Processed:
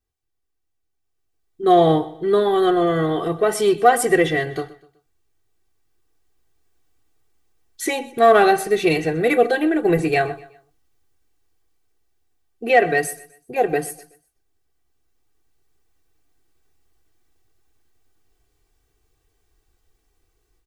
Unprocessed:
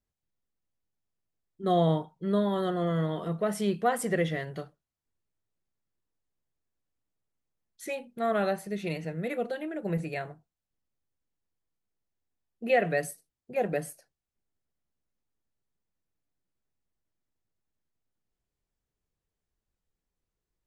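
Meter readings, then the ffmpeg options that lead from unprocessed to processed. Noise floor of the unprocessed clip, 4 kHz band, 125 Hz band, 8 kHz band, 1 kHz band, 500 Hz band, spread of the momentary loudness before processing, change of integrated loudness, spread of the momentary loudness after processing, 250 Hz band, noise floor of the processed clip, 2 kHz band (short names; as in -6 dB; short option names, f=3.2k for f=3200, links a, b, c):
under -85 dBFS, +12.5 dB, +4.0 dB, +13.0 dB, +14.0 dB, +12.5 dB, 14 LU, +11.5 dB, 14 LU, +9.5 dB, -72 dBFS, +13.0 dB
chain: -filter_complex "[0:a]aecho=1:1:2.6:0.82,dynaudnorm=f=980:g=3:m=15dB,asplit=2[a][b];[b]asoftclip=type=tanh:threshold=-16.5dB,volume=-11dB[c];[a][c]amix=inputs=2:normalize=0,aecho=1:1:125|250|375:0.119|0.044|0.0163,volume=-1dB"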